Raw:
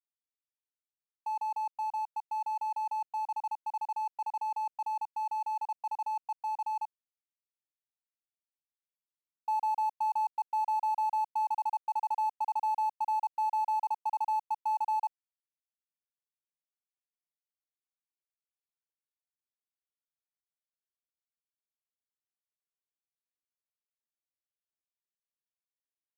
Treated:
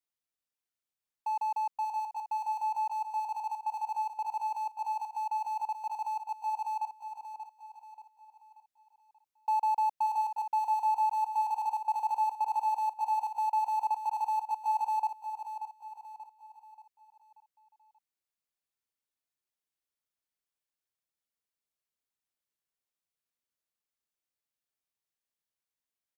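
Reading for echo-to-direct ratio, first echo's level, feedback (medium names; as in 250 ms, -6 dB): -8.0 dB, -9.0 dB, 44%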